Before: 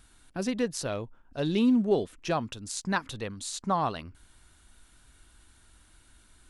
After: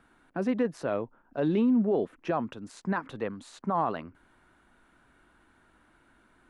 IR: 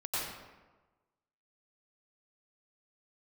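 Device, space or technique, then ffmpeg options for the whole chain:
DJ mixer with the lows and highs turned down: -filter_complex "[0:a]acrossover=split=160 2100:gain=0.141 1 0.0794[link_01][link_02][link_03];[link_01][link_02][link_03]amix=inputs=3:normalize=0,alimiter=limit=-23dB:level=0:latency=1:release=16,volume=4.5dB"

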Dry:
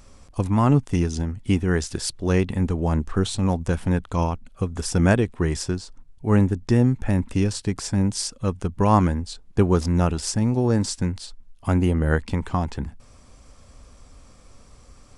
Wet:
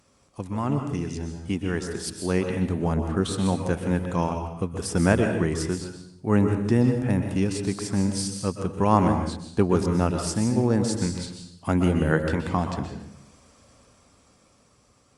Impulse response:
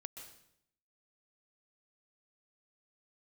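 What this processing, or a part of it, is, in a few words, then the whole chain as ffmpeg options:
far-field microphone of a smart speaker: -filter_complex "[1:a]atrim=start_sample=2205[link_01];[0:a][link_01]afir=irnorm=-1:irlink=0,highpass=120,dynaudnorm=framelen=640:gausssize=7:maxgain=10dB,volume=-2.5dB" -ar 48000 -c:a libopus -b:a 48k

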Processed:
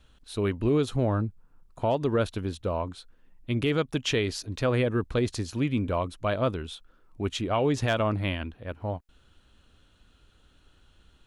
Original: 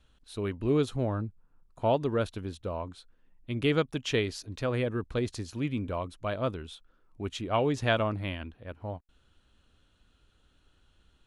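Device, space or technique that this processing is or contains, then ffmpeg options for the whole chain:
clipper into limiter: -af "asoftclip=type=hard:threshold=-15.5dB,alimiter=limit=-21.5dB:level=0:latency=1:release=120,volume=5.5dB"

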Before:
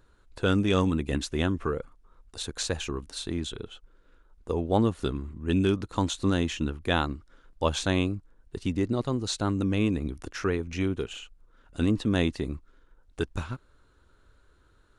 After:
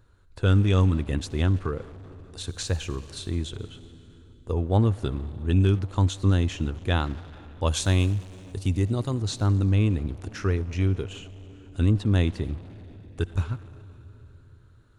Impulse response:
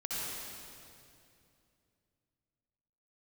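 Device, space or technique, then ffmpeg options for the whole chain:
saturated reverb return: -filter_complex "[0:a]asettb=1/sr,asplit=3[link_01][link_02][link_03];[link_01]atrim=end=7.664[link_04];[link_02]atrim=start=7.66:end=9.22,asetpts=PTS-STARTPTS,afade=type=in:duration=0.004:curve=qsin,afade=type=out:start_time=1.556:duration=0.004:curve=qsin,aemphasis=mode=production:type=50fm[link_05];[link_03]atrim=start=9.216[link_06];[link_04][link_05]acrossfade=duration=0.004:curve1=hsin:curve2=qsin[link_07];[link_07][link_06]acrossfade=duration=0.004:curve1=qsin:curve2=hsin,equalizer=frequency=97:width=1.7:gain=13,asplit=2[link_08][link_09];[1:a]atrim=start_sample=2205[link_10];[link_09][link_10]afir=irnorm=-1:irlink=0,asoftclip=type=tanh:threshold=-25dB,volume=-13dB[link_11];[link_08][link_11]amix=inputs=2:normalize=0,volume=-2.5dB"

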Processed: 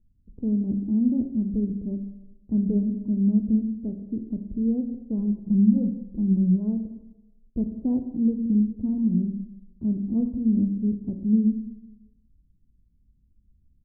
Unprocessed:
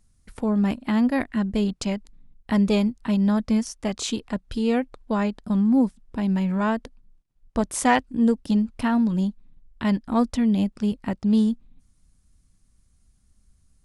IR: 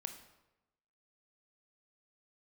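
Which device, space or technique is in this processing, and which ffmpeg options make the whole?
next room: -filter_complex "[0:a]lowpass=frequency=360:width=0.5412,lowpass=frequency=360:width=1.3066[link_01];[1:a]atrim=start_sample=2205[link_02];[link_01][link_02]afir=irnorm=-1:irlink=0,asplit=3[link_03][link_04][link_05];[link_03]afade=type=out:start_time=5.18:duration=0.02[link_06];[link_04]aecho=1:1:5.8:0.86,afade=type=in:start_time=5.18:duration=0.02,afade=type=out:start_time=6.55:duration=0.02[link_07];[link_05]afade=type=in:start_time=6.55:duration=0.02[link_08];[link_06][link_07][link_08]amix=inputs=3:normalize=0,volume=1.5dB"

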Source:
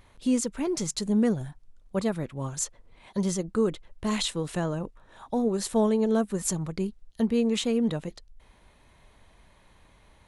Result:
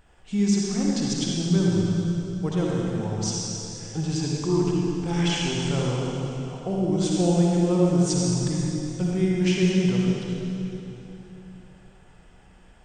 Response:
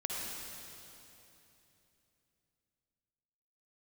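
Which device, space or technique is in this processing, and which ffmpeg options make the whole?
slowed and reverbed: -filter_complex "[0:a]asetrate=35280,aresample=44100[link_01];[1:a]atrim=start_sample=2205[link_02];[link_01][link_02]afir=irnorm=-1:irlink=0"

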